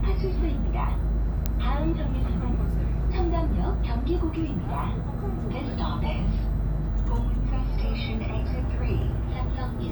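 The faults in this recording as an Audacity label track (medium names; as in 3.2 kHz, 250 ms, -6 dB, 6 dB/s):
1.460000	1.460000	pop -11 dBFS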